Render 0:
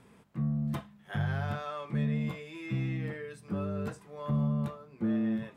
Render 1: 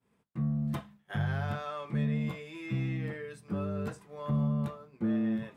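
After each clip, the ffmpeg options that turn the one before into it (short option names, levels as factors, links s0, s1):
-af "agate=range=0.0224:threshold=0.00398:ratio=3:detection=peak"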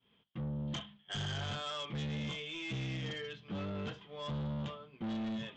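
-af "lowpass=f=3200:t=q:w=16,aresample=16000,asoftclip=type=tanh:threshold=0.0211,aresample=44100,volume=0.841"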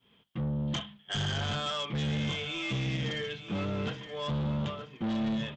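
-af "aecho=1:1:922|1844|2766:0.251|0.0578|0.0133,volume=2.11"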